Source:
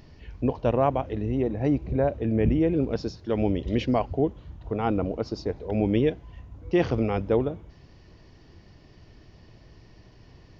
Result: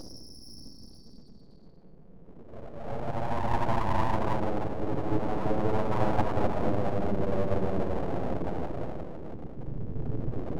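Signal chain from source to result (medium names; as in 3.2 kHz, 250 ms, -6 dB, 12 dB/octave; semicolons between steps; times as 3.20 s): loudest bins only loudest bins 16; Paulstretch 18×, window 0.10 s, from 3.11 s; full-wave rectifier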